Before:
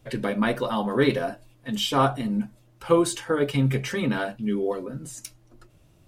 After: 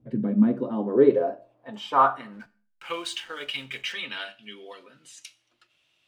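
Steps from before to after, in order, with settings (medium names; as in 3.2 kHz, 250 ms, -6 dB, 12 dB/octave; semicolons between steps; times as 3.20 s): band-pass sweep 210 Hz -> 3 kHz, 0.38–3.08 s; 2.33–3.93 s: hysteresis with a dead band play -52 dBFS; Schroeder reverb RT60 0.41 s, combs from 26 ms, DRR 17 dB; trim +6.5 dB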